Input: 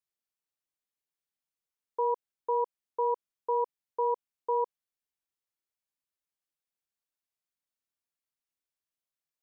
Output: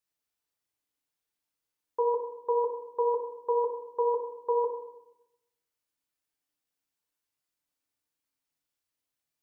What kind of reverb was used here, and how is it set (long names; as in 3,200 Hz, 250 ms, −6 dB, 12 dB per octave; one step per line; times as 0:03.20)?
feedback delay network reverb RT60 0.86 s, low-frequency decay 1.45×, high-frequency decay 0.85×, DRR 1.5 dB
level +2.5 dB